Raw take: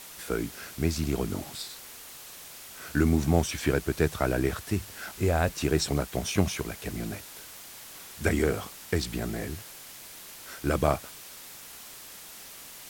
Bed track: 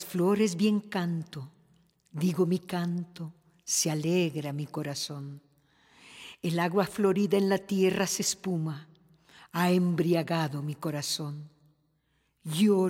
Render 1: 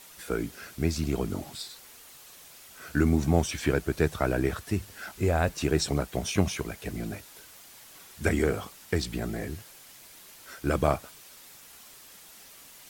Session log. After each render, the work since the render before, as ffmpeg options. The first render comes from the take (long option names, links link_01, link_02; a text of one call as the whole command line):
ffmpeg -i in.wav -af "afftdn=noise_reduction=6:noise_floor=-46" out.wav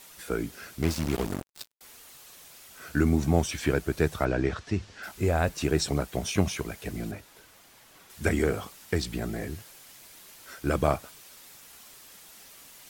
ffmpeg -i in.wav -filter_complex "[0:a]asettb=1/sr,asplit=3[link_01][link_02][link_03];[link_01]atrim=end=0.824[link_04];[link_02]atrim=start=0.82:end=1.81,asetpts=PTS-STARTPTS,afade=type=in:duration=0.004:curve=qsin,afade=type=out:start_time=0.986:duration=0.004:curve=qsin,acrusher=bits=4:mix=0:aa=0.5[link_05];[link_03]atrim=start=1.806[link_06];[link_04][link_05]acrossfade=duration=0.004:curve1=hsin:curve2=qsin[link_07];[link_07][link_06]acrossfade=duration=0.004:curve1=qsin:curve2=hsin,asplit=3[link_08][link_09][link_10];[link_08]afade=type=out:start_time=4.24:duration=0.02[link_11];[link_09]lowpass=frequency=6300:width=0.5412,lowpass=frequency=6300:width=1.3066,afade=type=in:start_time=4.24:duration=0.02,afade=type=out:start_time=5.02:duration=0.02[link_12];[link_10]afade=type=in:start_time=5.02:duration=0.02[link_13];[link_11][link_12][link_13]amix=inputs=3:normalize=0,asettb=1/sr,asplit=3[link_14][link_15][link_16];[link_14]atrim=end=7.114[link_17];[link_15]atrim=start=7.11:end=8.1,asetpts=PTS-STARTPTS,afade=type=in:duration=0.004:curve=qsin,afade=type=out:start_time=0.986:duration=0.004:curve=qsin,highshelf=frequency=3400:gain=-8[link_18];[link_16]atrim=start=8.096[link_19];[link_17][link_18]acrossfade=duration=0.004:curve1=hsin:curve2=qsin[link_20];[link_20][link_19]acrossfade=duration=0.004:curve1=qsin:curve2=hsin" out.wav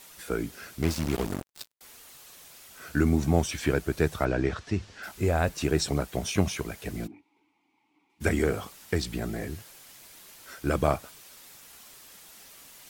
ffmpeg -i in.wav -filter_complex "[0:a]asplit=3[link_01][link_02][link_03];[link_01]afade=type=out:start_time=7.06:duration=0.02[link_04];[link_02]asplit=3[link_05][link_06][link_07];[link_05]bandpass=frequency=300:width_type=q:width=8,volume=0dB[link_08];[link_06]bandpass=frequency=870:width_type=q:width=8,volume=-6dB[link_09];[link_07]bandpass=frequency=2240:width_type=q:width=8,volume=-9dB[link_10];[link_08][link_09][link_10]amix=inputs=3:normalize=0,afade=type=in:start_time=7.06:duration=0.02,afade=type=out:start_time=8.2:duration=0.02[link_11];[link_03]afade=type=in:start_time=8.2:duration=0.02[link_12];[link_04][link_11][link_12]amix=inputs=3:normalize=0" out.wav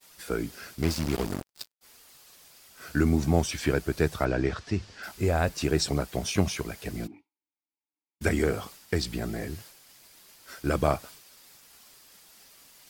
ffmpeg -i in.wav -af "agate=range=-33dB:threshold=-45dB:ratio=3:detection=peak,equalizer=frequency=4800:width=5:gain=5" out.wav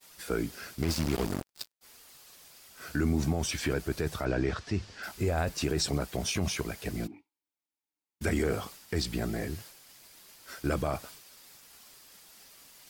ffmpeg -i in.wav -af "alimiter=limit=-19dB:level=0:latency=1:release=22" out.wav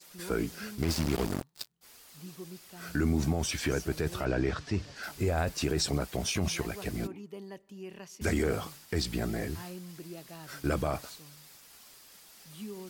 ffmpeg -i in.wav -i bed.wav -filter_complex "[1:a]volume=-19dB[link_01];[0:a][link_01]amix=inputs=2:normalize=0" out.wav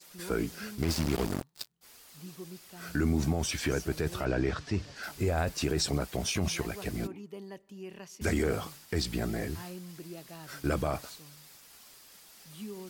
ffmpeg -i in.wav -af anull out.wav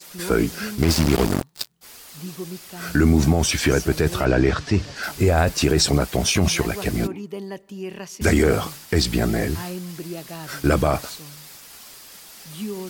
ffmpeg -i in.wav -af "volume=11.5dB" out.wav